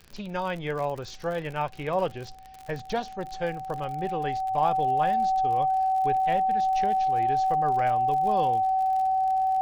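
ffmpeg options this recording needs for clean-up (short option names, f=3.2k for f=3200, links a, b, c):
-af "adeclick=t=4,bandreject=f=64.3:t=h:w=4,bandreject=f=128.6:t=h:w=4,bandreject=f=192.9:t=h:w=4,bandreject=f=257.2:t=h:w=4,bandreject=f=760:w=30,agate=range=-21dB:threshold=-33dB"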